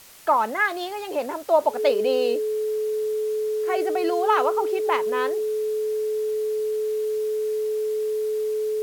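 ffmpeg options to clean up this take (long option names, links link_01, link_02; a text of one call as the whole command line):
ffmpeg -i in.wav -af "bandreject=frequency=430:width=30,afwtdn=0.0045" out.wav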